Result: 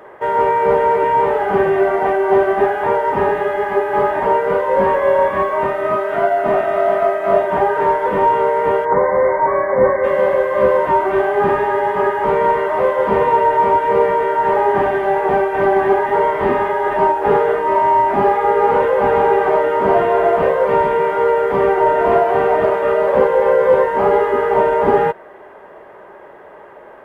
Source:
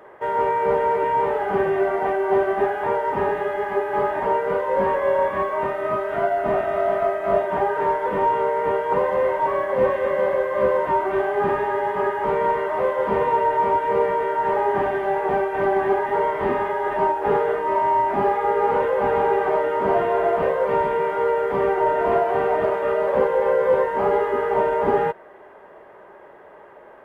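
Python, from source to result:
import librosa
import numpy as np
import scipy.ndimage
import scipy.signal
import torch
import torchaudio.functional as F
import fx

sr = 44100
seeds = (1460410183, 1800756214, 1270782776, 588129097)

y = fx.peak_eq(x, sr, hz=60.0, db=-10.0, octaves=1.8, at=(5.92, 7.39))
y = fx.brickwall_lowpass(y, sr, high_hz=2300.0, at=(8.84, 10.03), fade=0.02)
y = y * librosa.db_to_amplitude(6.0)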